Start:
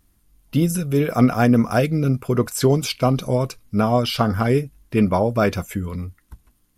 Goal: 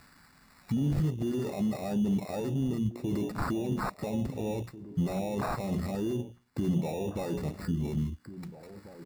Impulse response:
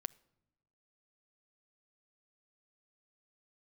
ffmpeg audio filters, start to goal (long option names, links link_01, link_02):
-filter_complex "[0:a]highpass=320,tiltshelf=frequency=1200:gain=3,asetrate=37485,aresample=44100,asuperstop=centerf=3500:order=8:qfactor=6.2,bandreject=frequency=60:width_type=h:width=6,bandreject=frequency=120:width_type=h:width=6,bandreject=frequency=180:width_type=h:width=6,bandreject=frequency=240:width_type=h:width=6,bandreject=frequency=300:width_type=h:width=6,bandreject=frequency=360:width_type=h:width=6,bandreject=frequency=420:width_type=h:width=6,bandreject=frequency=480:width_type=h:width=6,bandreject=frequency=540:width_type=h:width=6,atempo=0.88,acompressor=mode=upward:threshold=-22dB:ratio=2.5,acrusher=samples=14:mix=1:aa=0.000001,alimiter=limit=-22dB:level=0:latency=1:release=14,afwtdn=0.0501,equalizer=frequency=470:width=0.68:gain=-11.5,asplit=2[link_01][link_02];[link_02]adelay=1691,volume=-14dB,highshelf=frequency=4000:gain=-38[link_03];[link_01][link_03]amix=inputs=2:normalize=0,volume=5.5dB"